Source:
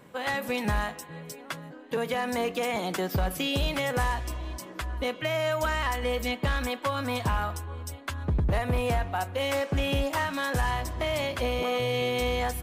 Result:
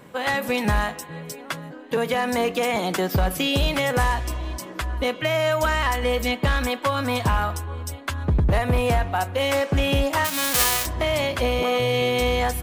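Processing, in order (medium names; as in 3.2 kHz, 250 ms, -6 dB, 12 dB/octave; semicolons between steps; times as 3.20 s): 10.24–10.85 s: formants flattened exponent 0.1; trim +6 dB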